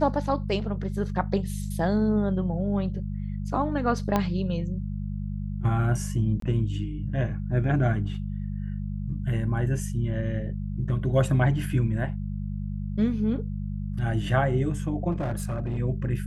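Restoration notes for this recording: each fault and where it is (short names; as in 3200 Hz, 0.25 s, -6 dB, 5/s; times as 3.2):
hum 50 Hz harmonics 4 -31 dBFS
4.16 pop -10 dBFS
6.4–6.42 gap 23 ms
15.11–15.8 clipped -24.5 dBFS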